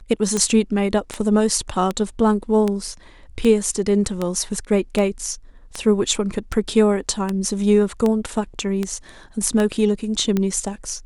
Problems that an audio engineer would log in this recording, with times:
tick 78 rpm -9 dBFS

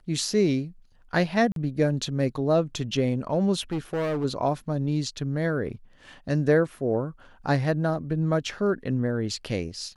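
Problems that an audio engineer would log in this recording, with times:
1.52–1.56 gap 42 ms
3.72–4.25 clipped -24 dBFS

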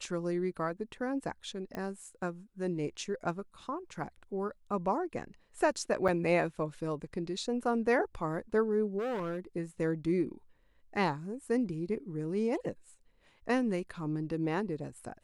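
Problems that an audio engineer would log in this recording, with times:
1.75 pop -26 dBFS
6.08–6.09 gap 6 ms
8.98–9.4 clipped -32 dBFS

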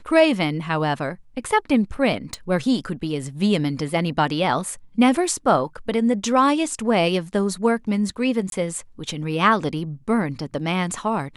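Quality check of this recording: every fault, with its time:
2.34 pop
8.5–8.52 gap 22 ms

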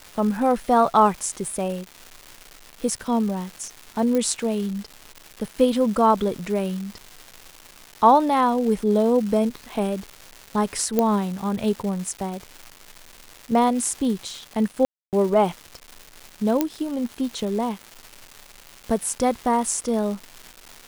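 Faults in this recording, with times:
crackle 480/s -31 dBFS
4.15 pop -12 dBFS
10.99 pop -7 dBFS
14.85–15.13 gap 0.278 s
16.61 pop -6 dBFS

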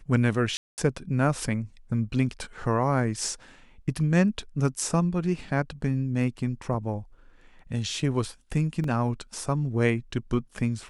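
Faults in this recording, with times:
0.57–0.78 gap 0.209 s
6.74 gap 3.8 ms
8.84 gap 2.1 ms

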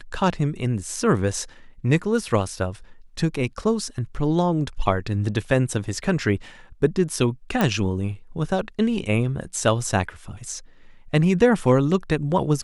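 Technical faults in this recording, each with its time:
7.61 pop -8 dBFS

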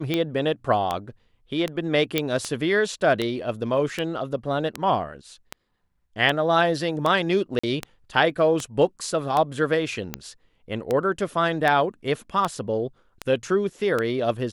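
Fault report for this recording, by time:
tick 78 rpm -11 dBFS
2.18 pop -7 dBFS
7.59–7.63 gap 45 ms

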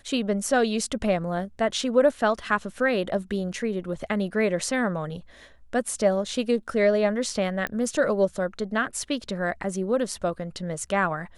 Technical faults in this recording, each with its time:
7.67 pop -15 dBFS

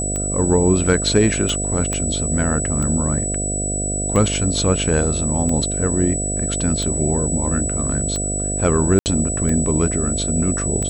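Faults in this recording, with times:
buzz 50 Hz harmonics 14 -25 dBFS
tick 45 rpm -13 dBFS
tone 7900 Hz -23 dBFS
1.93 pop -10 dBFS
8.99–9.06 gap 69 ms

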